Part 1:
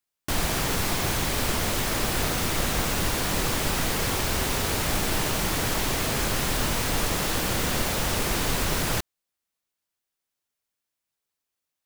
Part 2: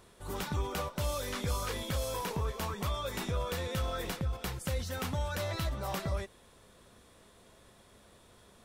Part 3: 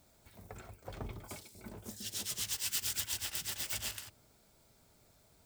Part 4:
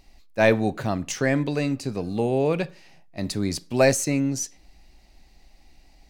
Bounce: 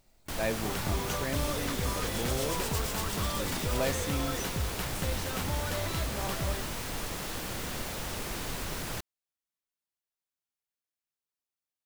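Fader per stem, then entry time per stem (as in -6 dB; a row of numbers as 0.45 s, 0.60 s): -10.5 dB, 0.0 dB, -4.0 dB, -13.5 dB; 0.00 s, 0.35 s, 0.00 s, 0.00 s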